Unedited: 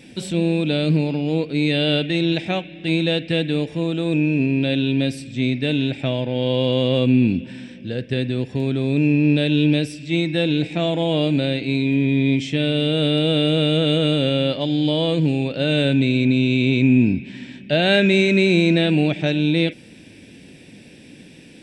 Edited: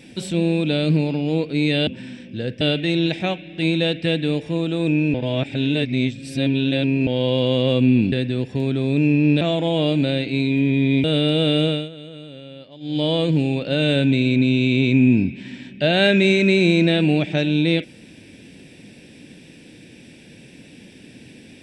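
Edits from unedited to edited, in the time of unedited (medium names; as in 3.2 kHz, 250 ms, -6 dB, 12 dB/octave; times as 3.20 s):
4.40–6.33 s: reverse
7.38–8.12 s: move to 1.87 s
9.41–10.76 s: delete
12.39–12.93 s: delete
13.53–14.94 s: dip -19.5 dB, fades 0.25 s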